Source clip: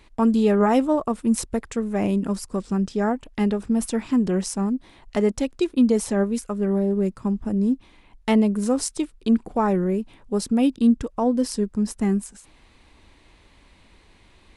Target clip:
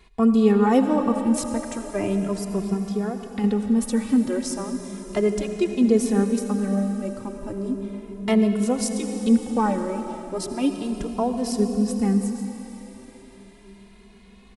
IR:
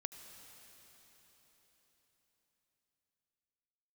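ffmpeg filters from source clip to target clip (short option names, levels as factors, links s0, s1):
-filter_complex "[0:a]asettb=1/sr,asplit=3[s0][s1][s2];[s0]atrim=end=2.734[s3];[s1]atrim=start=2.73:end=3.44,asetpts=PTS-STARTPTS,afade=t=in:d=0.004:c=qsin,afade=t=out:st=0.706:d=0.004:c=qsin,acompressor=threshold=0.0562:ratio=6[s4];[s2]atrim=start=3.436[s5];[s3][s4]acrossfade=d=0.004:c1=hsin:c2=qsin[s6];[s6][s5]acrossfade=d=0.004:c1=qsin:c2=hsin[s7];[1:a]atrim=start_sample=2205[s8];[s7][s8]afir=irnorm=-1:irlink=0,asplit=2[s9][s10];[s10]adelay=2.4,afreqshift=0.35[s11];[s9][s11]amix=inputs=2:normalize=1,volume=1.88"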